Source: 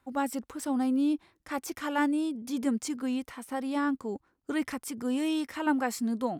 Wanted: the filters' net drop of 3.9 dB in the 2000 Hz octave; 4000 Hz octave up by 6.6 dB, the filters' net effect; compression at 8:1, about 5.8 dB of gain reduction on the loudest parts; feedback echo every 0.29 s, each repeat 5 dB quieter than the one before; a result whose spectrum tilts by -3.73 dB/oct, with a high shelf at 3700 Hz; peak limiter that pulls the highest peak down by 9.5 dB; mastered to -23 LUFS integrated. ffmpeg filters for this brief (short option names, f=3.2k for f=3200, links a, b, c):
-af "equalizer=f=2k:t=o:g=-8.5,highshelf=f=3.7k:g=5,equalizer=f=4k:t=o:g=8.5,acompressor=threshold=-29dB:ratio=8,alimiter=level_in=6.5dB:limit=-24dB:level=0:latency=1,volume=-6.5dB,aecho=1:1:290|580|870|1160|1450|1740|2030:0.562|0.315|0.176|0.0988|0.0553|0.031|0.0173,volume=14.5dB"